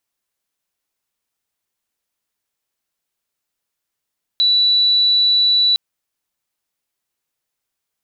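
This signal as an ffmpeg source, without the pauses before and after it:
-f lavfi -i "sine=f=3950:d=1.36:r=44100,volume=7.06dB"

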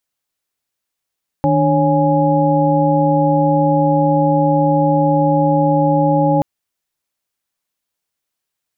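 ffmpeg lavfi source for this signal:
-f lavfi -i "aevalsrc='0.15*(sin(2*PI*155.56*t)+sin(2*PI*293.66*t)+sin(2*PI*554.37*t)+sin(2*PI*830.61*t))':d=4.98:s=44100"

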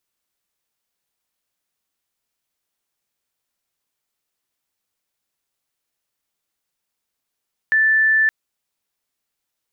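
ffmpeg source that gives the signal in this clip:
-f lavfi -i "aevalsrc='0.237*sin(2*PI*1760*t)':d=0.57:s=44100"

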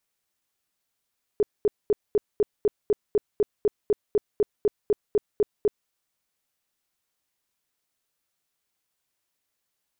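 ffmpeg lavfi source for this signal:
-f lavfi -i "aevalsrc='0.15*sin(2*PI*416*mod(t,0.25))*lt(mod(t,0.25),12/416)':d=4.5:s=44100"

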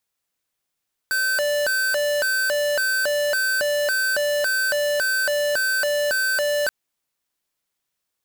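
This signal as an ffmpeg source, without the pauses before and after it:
-f lavfi -i "aevalsrc='0.0841*(2*lt(mod((1063*t+477/1.8*(0.5-abs(mod(1.8*t,1)-0.5))),1),0.5)-1)':d=5.58:s=44100"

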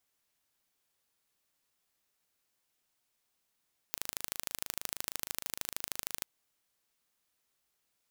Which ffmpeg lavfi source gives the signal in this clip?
-f lavfi -i "aevalsrc='0.473*eq(mod(n,1677),0)*(0.5+0.5*eq(mod(n,3354),0))':d=2.31:s=44100"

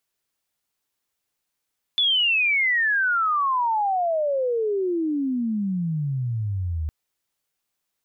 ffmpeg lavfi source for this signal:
-f lavfi -i "aevalsrc='pow(10,(-17-6.5*t/4.91)/20)*sin(2*PI*3500*4.91/log(75/3500)*(exp(log(75/3500)*t/4.91)-1))':d=4.91:s=44100"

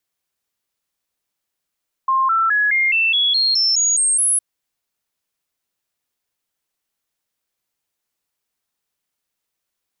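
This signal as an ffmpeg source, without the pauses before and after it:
-f lavfi -i "aevalsrc='0.211*clip(min(mod(t,0.21),0.21-mod(t,0.21))/0.005,0,1)*sin(2*PI*1060*pow(2,floor(t/0.21)/3)*mod(t,0.21))':d=2.31:s=44100"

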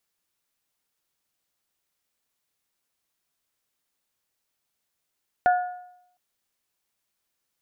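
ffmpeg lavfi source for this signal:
-f lavfi -i "aevalsrc='0.2*pow(10,-3*t/0.77)*sin(2*PI*722*t)+0.0708*pow(10,-3*t/0.625)*sin(2*PI*1444*t)+0.0251*pow(10,-3*t/0.592)*sin(2*PI*1732.8*t)':d=0.71:s=44100"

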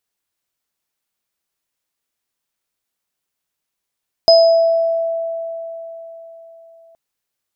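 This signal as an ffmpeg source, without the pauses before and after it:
-f lavfi -i "aevalsrc='0.531*pow(10,-3*t/4.06)*sin(2*PI*662*t)+0.335*pow(10,-3*t/0.74)*sin(2*PI*5040*t)':d=2.67:s=44100"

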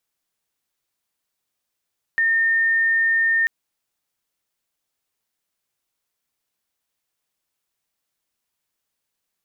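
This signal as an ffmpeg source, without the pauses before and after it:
-f lavfi -i "aevalsrc='0.168*sin(2*PI*1820*t)':d=1.29:s=44100"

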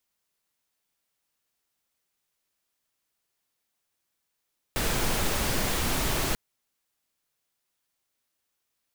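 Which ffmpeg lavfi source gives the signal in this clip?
-f lavfi -i "anoisesrc=c=pink:a=0.243:d=1.59:r=44100:seed=1"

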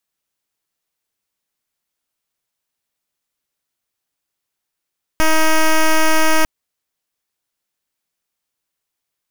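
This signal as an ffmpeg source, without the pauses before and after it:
-f lavfi -i "aevalsrc='0.266*(2*lt(mod(316*t,1),0.08)-1)':d=1.25:s=44100"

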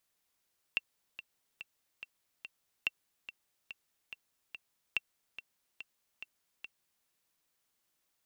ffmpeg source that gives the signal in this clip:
-f lavfi -i "aevalsrc='pow(10,(-16.5-14*gte(mod(t,5*60/143),60/143))/20)*sin(2*PI*2710*mod(t,60/143))*exp(-6.91*mod(t,60/143)/0.03)':d=6.29:s=44100"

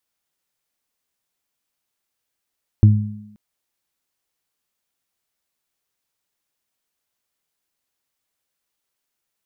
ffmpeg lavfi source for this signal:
-f lavfi -i "aevalsrc='0.596*pow(10,-3*t/0.64)*sin(2*PI*105*t)+0.168*pow(10,-3*t/1.05)*sin(2*PI*210*t)+0.0841*pow(10,-3*t/0.22)*sin(2*PI*315*t)':d=0.53:s=44100"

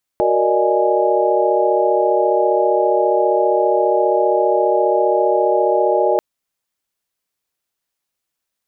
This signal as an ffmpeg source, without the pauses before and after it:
-f lavfi -i "aevalsrc='0.112*(sin(2*PI*369.99*t)+sin(2*PI*466.16*t)+sin(2*PI*587.33*t)+sin(2*PI*622.25*t)+sin(2*PI*830.61*t))':d=5.99:s=44100"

